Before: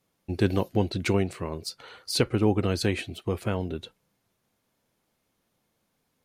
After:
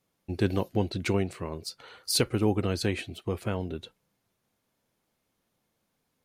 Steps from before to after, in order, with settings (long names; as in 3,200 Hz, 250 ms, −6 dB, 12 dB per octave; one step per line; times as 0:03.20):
0:02.03–0:02.61: high-shelf EQ 5,200 Hz → 10,000 Hz +10.5 dB
level −2.5 dB